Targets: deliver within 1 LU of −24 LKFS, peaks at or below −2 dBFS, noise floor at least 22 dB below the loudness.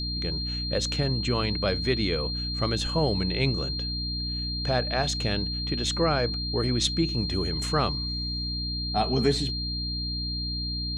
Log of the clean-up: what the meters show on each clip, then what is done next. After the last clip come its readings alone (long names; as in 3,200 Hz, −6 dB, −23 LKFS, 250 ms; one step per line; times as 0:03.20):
mains hum 60 Hz; hum harmonics up to 300 Hz; level of the hum −30 dBFS; interfering tone 4,200 Hz; level of the tone −31 dBFS; integrated loudness −27.0 LKFS; sample peak −10.5 dBFS; target loudness −24.0 LKFS
→ hum removal 60 Hz, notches 5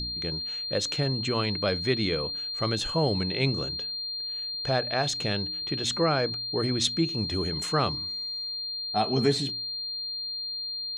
mains hum none found; interfering tone 4,200 Hz; level of the tone −31 dBFS
→ notch filter 4,200 Hz, Q 30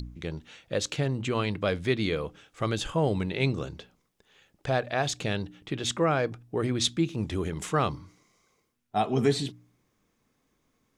interfering tone none found; integrated loudness −29.0 LKFS; sample peak −12.0 dBFS; target loudness −24.0 LKFS
→ level +5 dB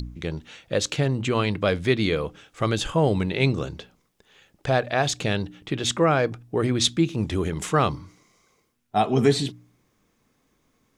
integrated loudness −24.0 LKFS; sample peak −7.0 dBFS; background noise floor −69 dBFS